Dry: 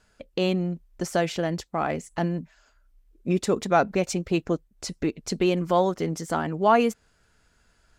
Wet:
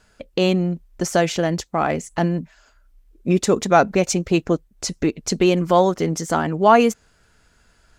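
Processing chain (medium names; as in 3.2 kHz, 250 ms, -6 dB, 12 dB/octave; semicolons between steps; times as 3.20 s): dynamic bell 6.4 kHz, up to +5 dB, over -52 dBFS, Q 3.2; trim +6 dB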